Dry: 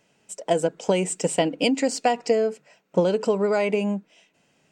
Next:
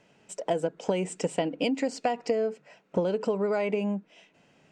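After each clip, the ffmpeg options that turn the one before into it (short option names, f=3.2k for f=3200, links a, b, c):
-af "aemphasis=mode=reproduction:type=50fm,acompressor=threshold=-35dB:ratio=2,volume=3.5dB"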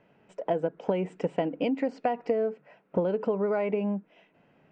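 -af "lowpass=2k"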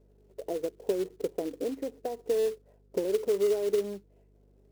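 -af "bandpass=f=400:t=q:w=4.9:csg=0,acrusher=bits=4:mode=log:mix=0:aa=0.000001,aeval=exprs='val(0)+0.000562*(sin(2*PI*50*n/s)+sin(2*PI*2*50*n/s)/2+sin(2*PI*3*50*n/s)/3+sin(2*PI*4*50*n/s)/4+sin(2*PI*5*50*n/s)/5)':c=same,volume=4dB"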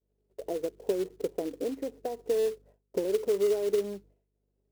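-af "agate=range=-33dB:threshold=-50dB:ratio=3:detection=peak"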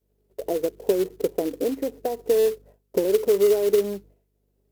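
-af "equalizer=f=13k:t=o:w=0.35:g=8,volume=7.5dB"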